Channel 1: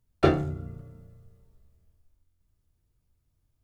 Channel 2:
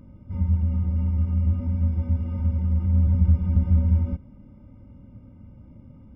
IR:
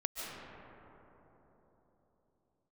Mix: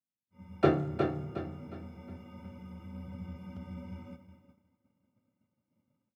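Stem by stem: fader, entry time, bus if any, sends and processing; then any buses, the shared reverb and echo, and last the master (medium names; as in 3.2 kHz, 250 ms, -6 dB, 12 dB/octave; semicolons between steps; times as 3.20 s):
-3.5 dB, 0.40 s, send -23 dB, echo send -5 dB, treble shelf 3.3 kHz -10 dB
-15.5 dB, 0.00 s, no send, echo send -12.5 dB, tilt EQ +3.5 dB/octave; level rider gain up to 9 dB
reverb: on, RT60 3.9 s, pre-delay 105 ms
echo: feedback delay 362 ms, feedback 36%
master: high-pass 110 Hz 24 dB/octave; expander -52 dBFS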